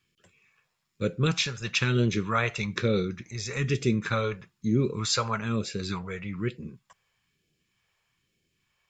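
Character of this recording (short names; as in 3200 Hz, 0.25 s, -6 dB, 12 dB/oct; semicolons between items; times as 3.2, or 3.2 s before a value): phasing stages 2, 1.1 Hz, lowest notch 270–1000 Hz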